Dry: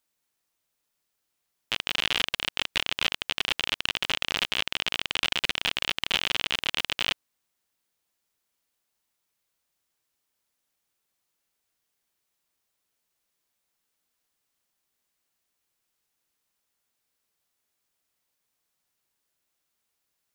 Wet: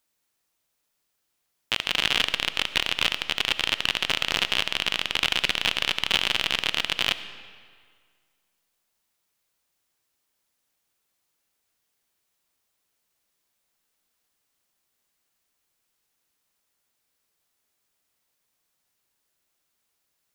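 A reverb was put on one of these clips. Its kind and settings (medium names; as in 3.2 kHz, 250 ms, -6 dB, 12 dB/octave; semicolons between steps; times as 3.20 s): algorithmic reverb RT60 1.9 s, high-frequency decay 0.8×, pre-delay 30 ms, DRR 12.5 dB; trim +3 dB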